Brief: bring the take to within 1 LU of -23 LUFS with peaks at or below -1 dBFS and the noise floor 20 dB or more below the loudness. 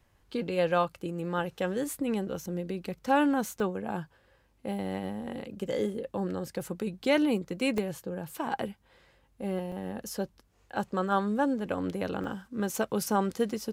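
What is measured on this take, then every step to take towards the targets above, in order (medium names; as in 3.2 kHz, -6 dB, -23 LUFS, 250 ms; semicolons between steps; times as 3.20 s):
dropouts 4; longest dropout 1.1 ms; loudness -31.5 LUFS; peak level -13.5 dBFS; loudness target -23.0 LUFS
-> interpolate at 3.60/7.78/9.72/12.24 s, 1.1 ms; trim +8.5 dB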